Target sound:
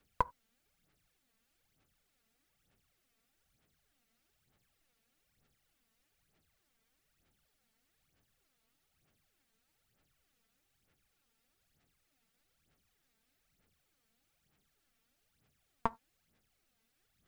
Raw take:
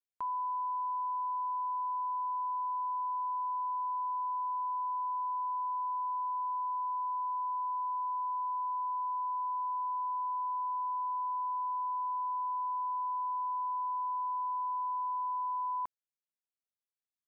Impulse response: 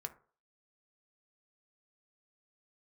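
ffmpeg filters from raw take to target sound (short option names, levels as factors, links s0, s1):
-filter_complex "[0:a]bass=f=250:g=10,treble=f=4000:g=-6,bandreject=f=1000:w=5.7,aphaser=in_gain=1:out_gain=1:delay=4.5:decay=0.66:speed=1.1:type=sinusoidal,asplit=2[s0][s1];[1:a]atrim=start_sample=2205,atrim=end_sample=4410[s2];[s1][s2]afir=irnorm=-1:irlink=0,volume=0.447[s3];[s0][s3]amix=inputs=2:normalize=0,volume=5.96"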